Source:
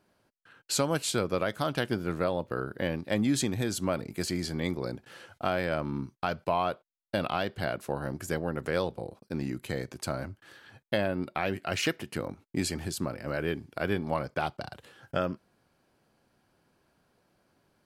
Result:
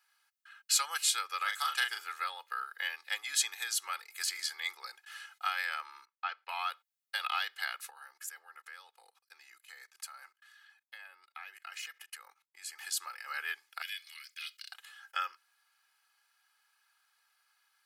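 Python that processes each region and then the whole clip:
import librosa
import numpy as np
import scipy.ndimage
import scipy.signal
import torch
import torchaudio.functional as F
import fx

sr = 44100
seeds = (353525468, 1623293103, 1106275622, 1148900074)

y = fx.chain(x, sr, fx.steep_highpass(hz=190.0, slope=36),
    fx.peak_eq(hz=7700.0, db=8.5, octaves=0.28),
    fx.doubler(ms=39.0, db=-5), at=(1.37, 2.05))
y = fx.chain(y, sr, fx.air_absorb(metres=300.0),
    fx.band_widen(depth_pct=40), at=(6.05, 6.49))
y = fx.chain(y, sr, fx.level_steps(step_db=21),
    fx.dynamic_eq(hz=3700.0, q=1.2, threshold_db=-59.0, ratio=4.0, max_db=-5), at=(7.9, 12.79))
y = fx.chain(y, sr, fx.cheby2_highpass(hz=380.0, order=4, stop_db=80),
    fx.transient(attack_db=-3, sustain_db=6), at=(13.82, 14.72))
y = scipy.signal.sosfilt(scipy.signal.butter(4, 1200.0, 'highpass', fs=sr, output='sos'), y)
y = fx.high_shelf(y, sr, hz=12000.0, db=5.0)
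y = y + 0.84 * np.pad(y, (int(2.4 * sr / 1000.0), 0))[:len(y)]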